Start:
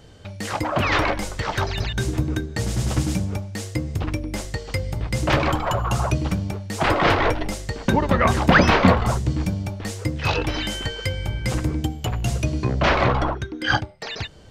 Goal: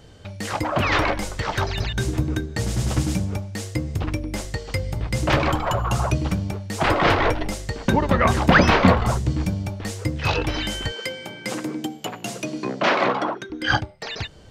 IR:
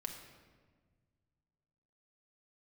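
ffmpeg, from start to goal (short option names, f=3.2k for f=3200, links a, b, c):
-filter_complex "[0:a]asettb=1/sr,asplit=3[a][b][c];[a]atrim=end=10.924[d];[b]atrim=start=10.92:end=13.5,asetpts=PTS-STARTPTS,afade=t=in:d=0.004:c=qsin,afade=t=out:st=2.576:d=0.004:c=qsin,highpass=f=200:w=0.5412,highpass=f=200:w=1.3066[e];[c]atrim=start=13.496[f];[d][e]acrossfade=d=0.004:c1=hsin:c2=qsin[g];[g][f]acrossfade=d=0.004:c1=qsin:c2=hsin"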